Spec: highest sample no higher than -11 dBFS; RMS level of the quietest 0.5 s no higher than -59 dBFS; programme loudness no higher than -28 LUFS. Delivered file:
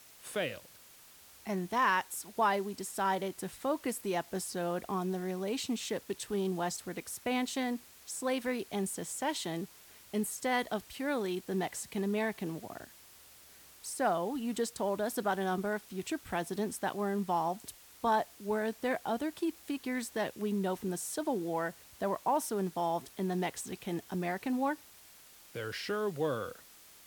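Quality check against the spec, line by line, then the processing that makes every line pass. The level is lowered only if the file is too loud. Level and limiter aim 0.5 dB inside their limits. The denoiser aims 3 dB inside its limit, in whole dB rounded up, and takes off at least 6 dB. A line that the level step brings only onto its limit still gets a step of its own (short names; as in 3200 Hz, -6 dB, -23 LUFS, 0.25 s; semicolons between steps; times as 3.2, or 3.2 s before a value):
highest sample -18.0 dBFS: OK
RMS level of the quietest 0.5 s -57 dBFS: fail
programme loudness -35.0 LUFS: OK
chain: denoiser 6 dB, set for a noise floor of -57 dBFS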